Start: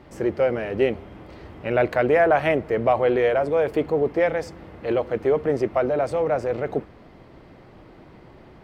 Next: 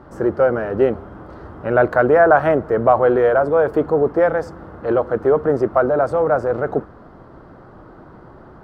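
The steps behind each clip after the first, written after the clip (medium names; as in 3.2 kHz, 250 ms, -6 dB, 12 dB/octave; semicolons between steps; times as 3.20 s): resonant high shelf 1.8 kHz -8 dB, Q 3; trim +4.5 dB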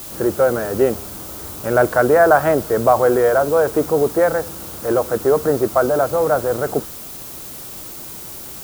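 added noise blue -34 dBFS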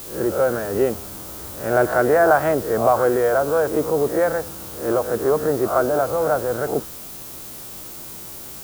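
reverse spectral sustain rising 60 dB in 0.40 s; trim -4 dB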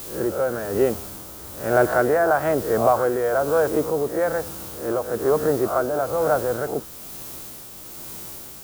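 tremolo 1.1 Hz, depth 39%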